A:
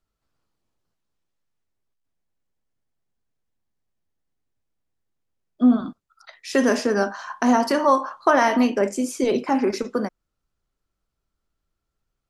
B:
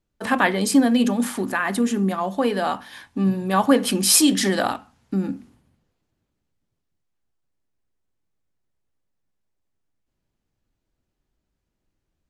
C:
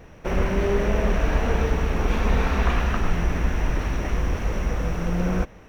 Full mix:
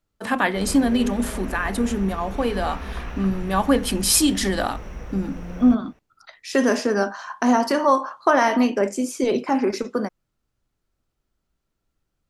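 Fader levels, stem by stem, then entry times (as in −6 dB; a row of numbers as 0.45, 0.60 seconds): 0.0, −2.0, −10.5 decibels; 0.00, 0.00, 0.30 seconds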